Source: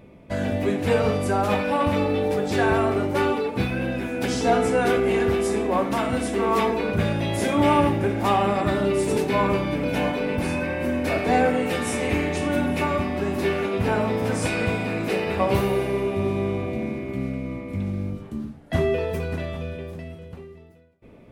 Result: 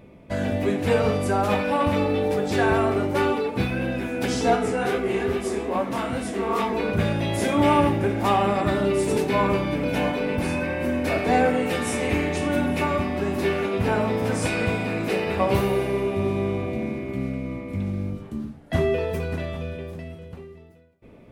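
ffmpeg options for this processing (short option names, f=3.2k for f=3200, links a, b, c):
-filter_complex "[0:a]asplit=3[a][b][c];[a]afade=t=out:st=4.55:d=0.02[d];[b]flanger=delay=19:depth=7.6:speed=2.4,afade=t=in:st=4.55:d=0.02,afade=t=out:st=6.73:d=0.02[e];[c]afade=t=in:st=6.73:d=0.02[f];[d][e][f]amix=inputs=3:normalize=0"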